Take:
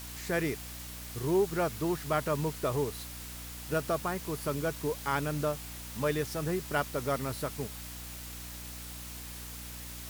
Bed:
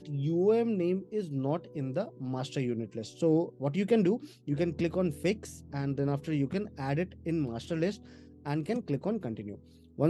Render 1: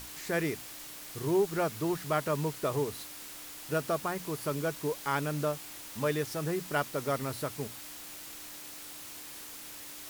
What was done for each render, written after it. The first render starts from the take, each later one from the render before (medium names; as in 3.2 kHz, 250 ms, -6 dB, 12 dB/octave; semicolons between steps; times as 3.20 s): hum notches 60/120/180/240 Hz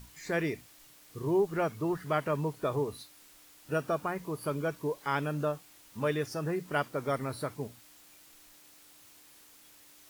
noise print and reduce 12 dB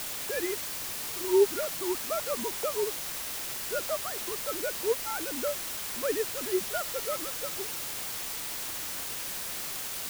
formants replaced by sine waves; word length cut 6-bit, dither triangular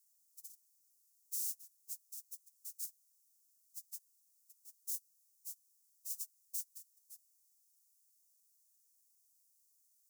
gate -27 dBFS, range -36 dB; inverse Chebyshev high-pass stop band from 2.4 kHz, stop band 50 dB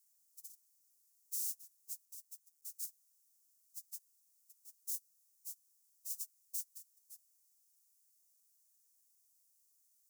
2.05–2.61 s: ring modulator 200 Hz -> 70 Hz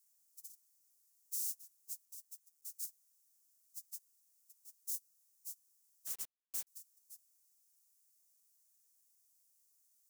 6.07–6.67 s: word length cut 8-bit, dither none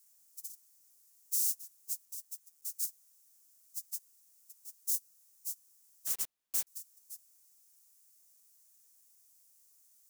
trim +8 dB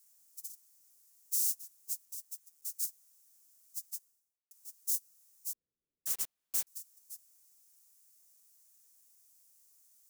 3.85–4.51 s: studio fade out; 5.53–6.06 s: steep low-pass 510 Hz